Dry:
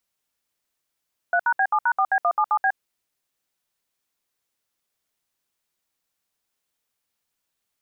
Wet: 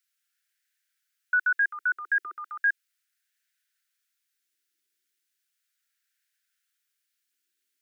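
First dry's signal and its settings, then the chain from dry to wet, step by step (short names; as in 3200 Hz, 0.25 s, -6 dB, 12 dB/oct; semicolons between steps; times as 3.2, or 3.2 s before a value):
DTMF "3#B7#4B177B", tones 65 ms, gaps 66 ms, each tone -19.5 dBFS
elliptic band-stop 350–1500 Hz, stop band 40 dB; LFO high-pass sine 0.36 Hz 430–1600 Hz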